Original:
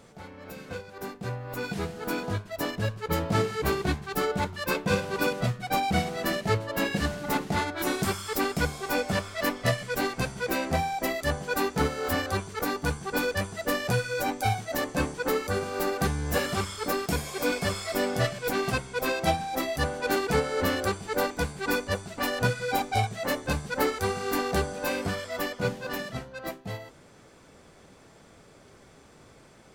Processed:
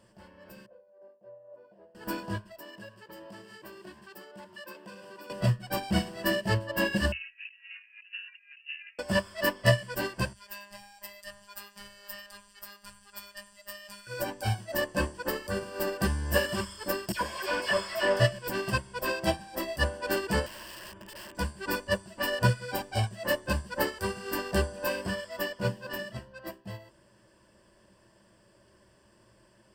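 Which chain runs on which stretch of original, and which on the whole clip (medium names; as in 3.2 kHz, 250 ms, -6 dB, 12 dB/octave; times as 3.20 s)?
0.66–1.95 s: band-pass filter 580 Hz, Q 6.8 + doubling 29 ms -13 dB
2.51–5.30 s: high-pass 230 Hz + compression 5:1, threshold -36 dBFS
7.12–8.99 s: compressor with a negative ratio -35 dBFS, ratio -0.5 + frequency inversion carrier 2.8 kHz + inverse Chebyshev high-pass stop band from 370 Hz, stop band 80 dB
10.33–14.07 s: robot voice 202 Hz + amplifier tone stack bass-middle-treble 10-0-10 + delay 94 ms -19 dB
17.12–18.20 s: bass shelf 290 Hz -8.5 dB + phase dispersion lows, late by 87 ms, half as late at 1.7 kHz + overdrive pedal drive 18 dB, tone 1.9 kHz, clips at -17 dBFS
20.46–21.35 s: Savitzky-Golay filter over 25 samples + compression, threshold -30 dBFS + integer overflow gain 32.5 dB
whole clip: rippled EQ curve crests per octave 1.3, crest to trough 12 dB; upward expansion 1.5:1, over -36 dBFS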